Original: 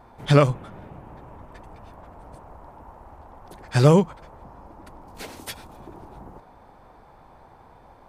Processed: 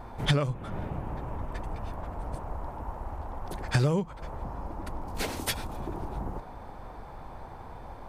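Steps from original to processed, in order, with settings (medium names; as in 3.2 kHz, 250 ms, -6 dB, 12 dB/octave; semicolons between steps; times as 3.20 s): bass shelf 83 Hz +9 dB; compression 12:1, threshold -27 dBFS, peak gain reduction 19 dB; trim +5 dB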